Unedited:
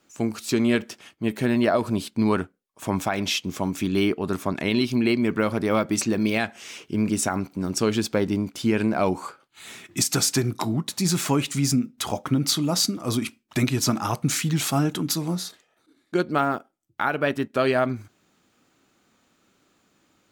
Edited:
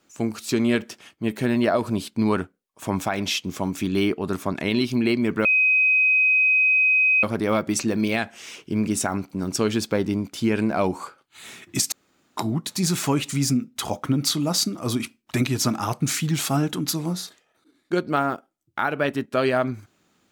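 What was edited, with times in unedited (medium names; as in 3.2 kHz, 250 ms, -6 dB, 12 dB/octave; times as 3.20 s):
5.45 s: add tone 2.52 kHz -15 dBFS 1.78 s
10.14–10.59 s: room tone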